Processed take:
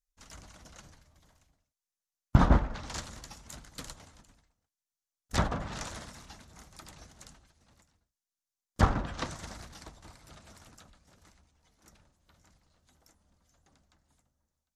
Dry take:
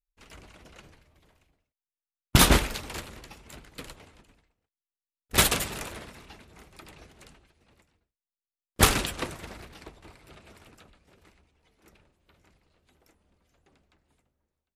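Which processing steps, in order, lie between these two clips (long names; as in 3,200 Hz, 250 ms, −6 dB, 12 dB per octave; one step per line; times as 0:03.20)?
graphic EQ with 15 bands 400 Hz −10 dB, 2,500 Hz −8 dB, 6,300 Hz +8 dB
treble cut that deepens with the level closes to 1,100 Hz, closed at −21.5 dBFS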